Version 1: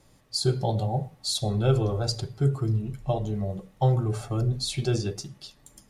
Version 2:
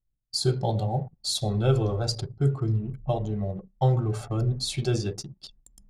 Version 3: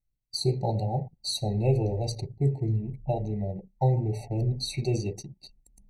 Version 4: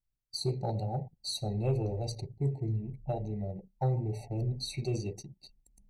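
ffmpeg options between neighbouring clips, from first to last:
-af "agate=range=-11dB:threshold=-55dB:ratio=16:detection=peak,anlmdn=0.158,areverse,acompressor=mode=upward:threshold=-45dB:ratio=2.5,areverse"
-af "afftfilt=real='re*eq(mod(floor(b*sr/1024/940),2),0)':imag='im*eq(mod(floor(b*sr/1024/940),2),0)':win_size=1024:overlap=0.75,volume=-1.5dB"
-af "asoftclip=type=tanh:threshold=-14.5dB,volume=-5dB"

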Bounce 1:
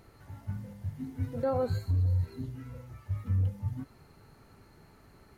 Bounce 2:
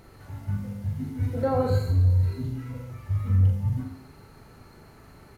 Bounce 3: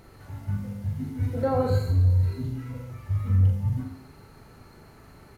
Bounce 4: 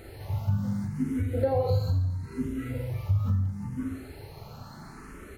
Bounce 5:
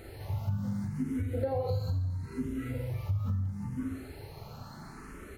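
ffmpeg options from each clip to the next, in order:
-af "aecho=1:1:40|86|138.9|199.7|269.7:0.631|0.398|0.251|0.158|0.1,volume=5dB"
-af anull
-filter_complex "[0:a]acompressor=threshold=-30dB:ratio=5,asplit=2[a][b];[b]afreqshift=0.74[c];[a][c]amix=inputs=2:normalize=1,volume=8.5dB"
-af "acompressor=threshold=-29dB:ratio=2,volume=-1.5dB"

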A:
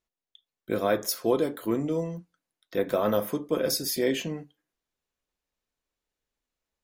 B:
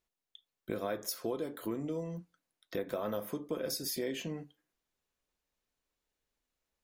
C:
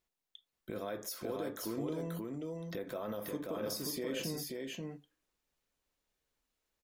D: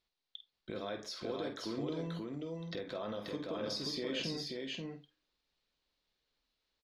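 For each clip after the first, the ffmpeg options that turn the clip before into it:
-af "acompressor=threshold=-36dB:ratio=3"
-filter_complex "[0:a]alimiter=level_in=6dB:limit=-24dB:level=0:latency=1:release=40,volume=-6dB,asplit=2[a][b];[b]aecho=0:1:533:0.708[c];[a][c]amix=inputs=2:normalize=0"
-filter_complex "[0:a]lowpass=f=4.2k:t=q:w=2.9,asplit=2[a][b];[b]adelay=49,volume=-10dB[c];[a][c]amix=inputs=2:normalize=0,volume=-1dB"

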